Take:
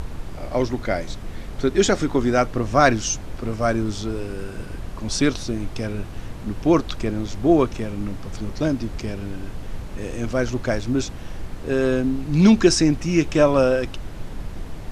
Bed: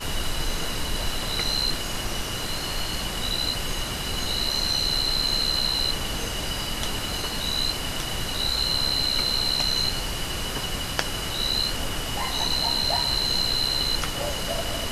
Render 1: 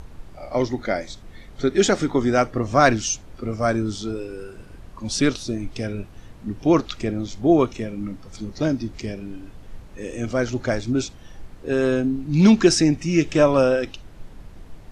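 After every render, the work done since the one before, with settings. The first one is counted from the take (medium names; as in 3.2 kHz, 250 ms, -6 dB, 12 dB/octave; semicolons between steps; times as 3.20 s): noise print and reduce 10 dB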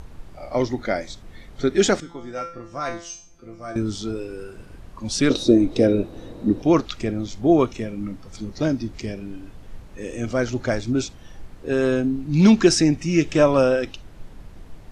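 2.00–3.76 s: feedback comb 170 Hz, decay 0.46 s, mix 90%; 5.30–6.62 s: small resonant body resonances 330/490/3800 Hz, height 15 dB, ringing for 20 ms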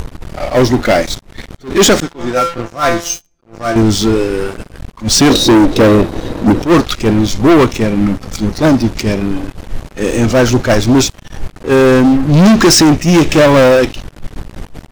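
waveshaping leveller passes 5; attacks held to a fixed rise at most 230 dB/s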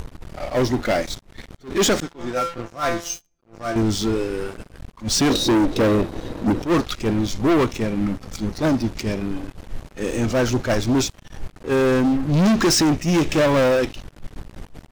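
trim -10 dB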